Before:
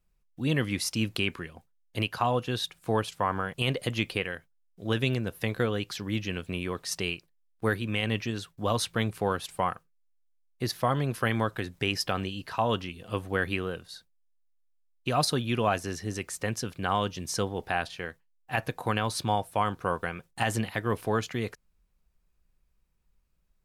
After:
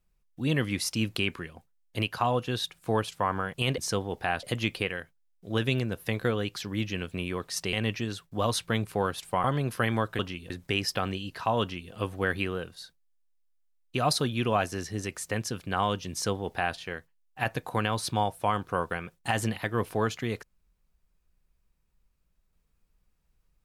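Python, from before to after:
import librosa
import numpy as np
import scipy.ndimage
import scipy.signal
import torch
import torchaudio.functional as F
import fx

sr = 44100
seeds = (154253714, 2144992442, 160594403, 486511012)

y = fx.edit(x, sr, fx.cut(start_s=7.08, length_s=0.91),
    fx.cut(start_s=9.7, length_s=1.17),
    fx.duplicate(start_s=12.73, length_s=0.31, to_s=11.62),
    fx.duplicate(start_s=17.24, length_s=0.65, to_s=3.78), tone=tone)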